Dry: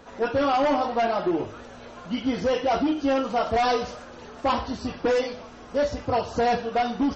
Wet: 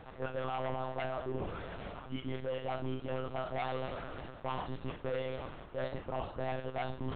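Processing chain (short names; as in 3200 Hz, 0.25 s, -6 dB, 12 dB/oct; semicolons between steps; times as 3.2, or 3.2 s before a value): limiter -19.5 dBFS, peak gain reduction 3.5 dB; reverse; compressor 5:1, threshold -36 dBFS, peak gain reduction 12.5 dB; reverse; de-hum 69.1 Hz, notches 6; monotone LPC vocoder at 8 kHz 130 Hz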